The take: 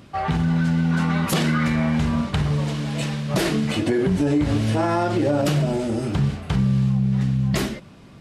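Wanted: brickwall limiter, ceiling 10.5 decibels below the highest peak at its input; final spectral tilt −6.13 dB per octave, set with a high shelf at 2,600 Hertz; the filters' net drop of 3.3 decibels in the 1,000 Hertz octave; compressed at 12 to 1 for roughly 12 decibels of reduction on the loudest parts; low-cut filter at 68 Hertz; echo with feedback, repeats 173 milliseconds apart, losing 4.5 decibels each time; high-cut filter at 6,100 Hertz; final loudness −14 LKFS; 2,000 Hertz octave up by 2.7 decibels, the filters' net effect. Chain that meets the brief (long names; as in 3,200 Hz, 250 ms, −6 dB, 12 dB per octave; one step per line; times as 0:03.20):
high-pass filter 68 Hz
low-pass filter 6,100 Hz
parametric band 1,000 Hz −6 dB
parametric band 2,000 Hz +7 dB
high-shelf EQ 2,600 Hz −3.5 dB
downward compressor 12 to 1, threshold −29 dBFS
brickwall limiter −26.5 dBFS
repeating echo 173 ms, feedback 60%, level −4.5 dB
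level +19 dB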